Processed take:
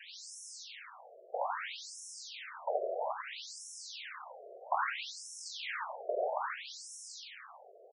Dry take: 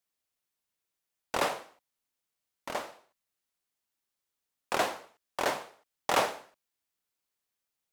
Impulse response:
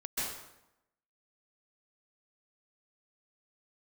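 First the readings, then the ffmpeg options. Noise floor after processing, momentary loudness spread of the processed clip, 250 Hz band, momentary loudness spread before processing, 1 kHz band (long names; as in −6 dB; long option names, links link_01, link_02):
−56 dBFS, 14 LU, below −15 dB, 19 LU, −3.0 dB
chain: -filter_complex "[0:a]aeval=exprs='val(0)+0.5*0.0316*sgn(val(0))':channel_layout=same,bass=frequency=250:gain=-5,treble=frequency=4000:gain=6,acrossover=split=650|3100|6900[link_01][link_02][link_03][link_04];[link_01]acompressor=threshold=-39dB:ratio=4[link_05];[link_02]acompressor=threshold=-32dB:ratio=4[link_06];[link_03]acompressor=threshold=-48dB:ratio=4[link_07];[link_04]acompressor=threshold=-48dB:ratio=4[link_08];[link_05][link_06][link_07][link_08]amix=inputs=4:normalize=0,asplit=2[link_09][link_10];[link_10]aecho=0:1:87.46|277:0.501|0.355[link_11];[link_09][link_11]amix=inputs=2:normalize=0,aeval=exprs='val(0)*gte(abs(val(0)),0.00944)':channel_layout=same,acrossover=split=130|3600[link_12][link_13][link_14];[link_13]dynaudnorm=framelen=220:gausssize=17:maxgain=6dB[link_15];[link_12][link_15][link_14]amix=inputs=3:normalize=0,afftfilt=real='re*between(b*sr/1024,500*pow(7600/500,0.5+0.5*sin(2*PI*0.61*pts/sr))/1.41,500*pow(7600/500,0.5+0.5*sin(2*PI*0.61*pts/sr))*1.41)':imag='im*between(b*sr/1024,500*pow(7600/500,0.5+0.5*sin(2*PI*0.61*pts/sr))/1.41,500*pow(7600/500,0.5+0.5*sin(2*PI*0.61*pts/sr))*1.41)':win_size=1024:overlap=0.75,volume=-1.5dB"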